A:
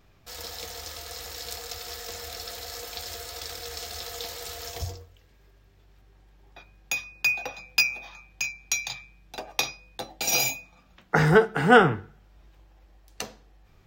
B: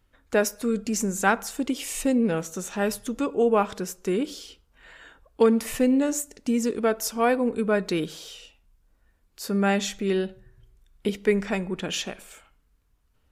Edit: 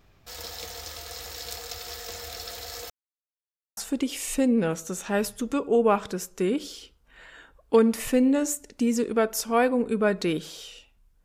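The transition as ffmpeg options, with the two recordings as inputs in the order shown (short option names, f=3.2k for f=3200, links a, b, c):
-filter_complex "[0:a]apad=whole_dur=11.24,atrim=end=11.24,asplit=2[a][b];[a]atrim=end=2.9,asetpts=PTS-STARTPTS,afade=t=out:st=2.896:d=0.004:c=hsin[c];[b]atrim=start=2.9:end=3.77,asetpts=PTS-STARTPTS,volume=0[d];[1:a]atrim=start=1.44:end=8.91,asetpts=PTS-STARTPTS,afade=t=in:d=0.004:c=hsin[e];[c][d][e]concat=n=3:v=0:a=1"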